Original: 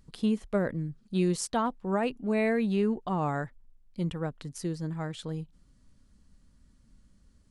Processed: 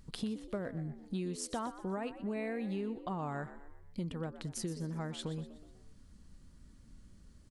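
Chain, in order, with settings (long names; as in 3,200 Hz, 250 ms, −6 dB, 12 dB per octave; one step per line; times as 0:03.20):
downward compressor 6 to 1, threshold −39 dBFS, peak gain reduction 15.5 dB
on a send: echo with shifted repeats 123 ms, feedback 44%, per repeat +71 Hz, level −13.5 dB
on the sum: level +3 dB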